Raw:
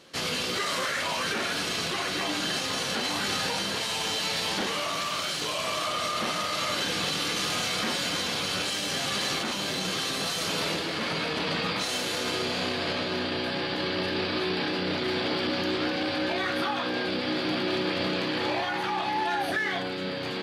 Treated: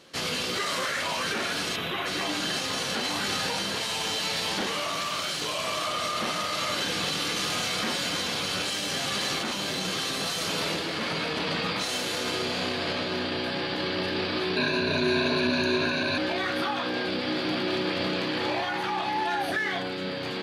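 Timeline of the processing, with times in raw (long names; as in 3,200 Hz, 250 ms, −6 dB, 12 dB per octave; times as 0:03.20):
0:01.76–0:02.06: gain on a spectral selection 4,000–11,000 Hz −15 dB
0:14.56–0:16.18: EQ curve with evenly spaced ripples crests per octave 1.5, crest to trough 17 dB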